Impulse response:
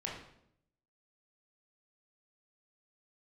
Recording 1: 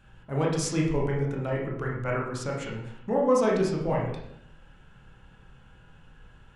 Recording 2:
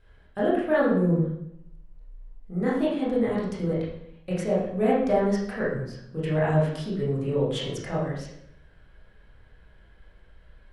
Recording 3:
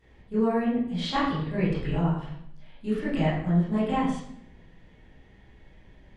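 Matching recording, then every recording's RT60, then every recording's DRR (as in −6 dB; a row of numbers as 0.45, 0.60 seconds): 1; 0.70, 0.70, 0.70 seconds; −3.0, −8.0, −13.0 decibels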